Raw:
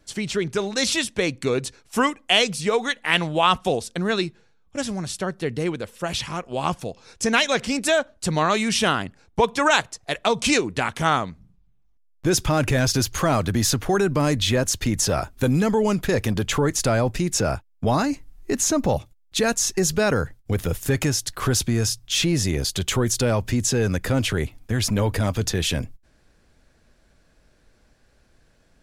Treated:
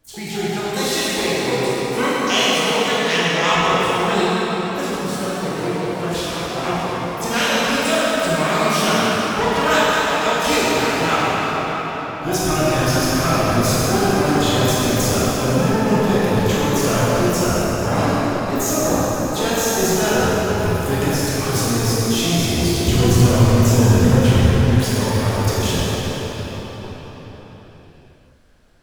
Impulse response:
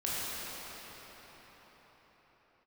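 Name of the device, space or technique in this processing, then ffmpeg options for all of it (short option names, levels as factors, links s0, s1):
shimmer-style reverb: -filter_complex "[0:a]asplit=2[s0][s1];[s1]asetrate=88200,aresample=44100,atempo=0.5,volume=0.447[s2];[s0][s2]amix=inputs=2:normalize=0[s3];[1:a]atrim=start_sample=2205[s4];[s3][s4]afir=irnorm=-1:irlink=0,asettb=1/sr,asplit=3[s5][s6][s7];[s5]atrim=end=22.884[s8];[s6]atrim=start=22.88:end=24.82,asetpts=PTS-STARTPTS,afade=t=in:d=0.004:c=qsin,afade=t=out:st=1.936:d=0.004:c=qsin,bass=f=250:g=8,treble=f=4000:g=-1[s9];[s7]atrim=start=24.816[s10];[s8][s9]acrossfade=d=0.004:c1=hsin:c2=qsin[s11];[s11][s10]acrossfade=d=0.004:c1=qsin:c2=hsin,volume=0.631"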